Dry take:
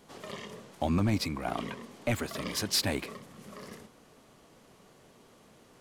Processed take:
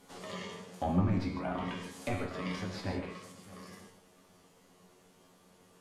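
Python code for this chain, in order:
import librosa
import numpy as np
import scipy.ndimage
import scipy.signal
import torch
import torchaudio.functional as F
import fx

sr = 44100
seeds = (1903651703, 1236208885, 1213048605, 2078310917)

y = fx.rider(x, sr, range_db=3, speed_s=2.0)
y = fx.peak_eq(y, sr, hz=12000.0, db=13.5, octaves=2.1, at=(1.0, 3.32))
y = 10.0 ** (-17.5 / 20.0) * np.tanh(y / 10.0 ** (-17.5 / 20.0))
y = fx.high_shelf(y, sr, hz=7300.0, db=5.0)
y = fx.env_lowpass_down(y, sr, base_hz=1400.0, full_db=-27.0)
y = fx.comb_fb(y, sr, f0_hz=91.0, decay_s=0.24, harmonics='all', damping=0.0, mix_pct=90)
y = y + 10.0 ** (-19.5 / 20.0) * np.pad(y, (int(618 * sr / 1000.0), 0))[:len(y)]
y = fx.rev_gated(y, sr, seeds[0], gate_ms=180, shape='flat', drr_db=3.0)
y = y * 10.0 ** (4.0 / 20.0)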